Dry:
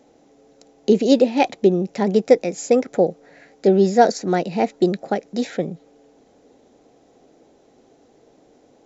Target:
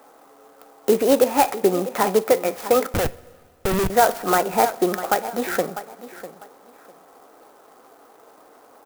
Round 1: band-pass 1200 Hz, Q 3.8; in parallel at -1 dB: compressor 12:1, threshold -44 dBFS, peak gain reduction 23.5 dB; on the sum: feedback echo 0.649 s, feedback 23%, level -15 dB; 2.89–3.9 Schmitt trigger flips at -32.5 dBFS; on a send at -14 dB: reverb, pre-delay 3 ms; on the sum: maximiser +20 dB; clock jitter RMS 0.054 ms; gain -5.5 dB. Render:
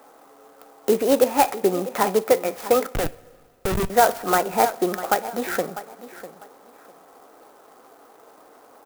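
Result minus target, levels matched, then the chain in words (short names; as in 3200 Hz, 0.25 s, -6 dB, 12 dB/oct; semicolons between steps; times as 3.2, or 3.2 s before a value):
compressor: peak gain reduction +8.5 dB
band-pass 1200 Hz, Q 3.8; in parallel at -1 dB: compressor 12:1, threshold -35 dBFS, peak gain reduction 15 dB; on the sum: feedback echo 0.649 s, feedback 23%, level -15 dB; 2.89–3.9 Schmitt trigger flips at -32.5 dBFS; on a send at -14 dB: reverb, pre-delay 3 ms; on the sum: maximiser +20 dB; clock jitter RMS 0.054 ms; gain -5.5 dB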